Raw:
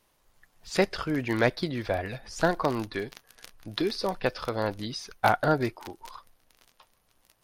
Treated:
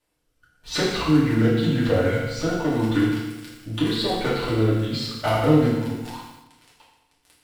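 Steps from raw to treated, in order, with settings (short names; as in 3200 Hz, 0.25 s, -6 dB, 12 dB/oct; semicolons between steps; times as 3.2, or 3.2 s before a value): compressor 2.5:1, threshold -26 dBFS, peak gain reduction 6.5 dB; sample leveller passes 2; rotary speaker horn 0.9 Hz, later 7 Hz, at 5.92; formant shift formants -3 st; FDN reverb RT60 0.99 s, low-frequency decay 1.2×, high-frequency decay 0.95×, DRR -6.5 dB; lo-fi delay 81 ms, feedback 55%, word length 7-bit, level -8.5 dB; gain -3.5 dB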